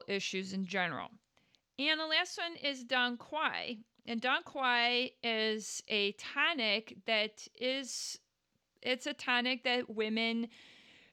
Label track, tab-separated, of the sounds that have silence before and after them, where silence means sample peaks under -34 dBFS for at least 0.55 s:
1.790000	8.130000	sound
8.860000	10.450000	sound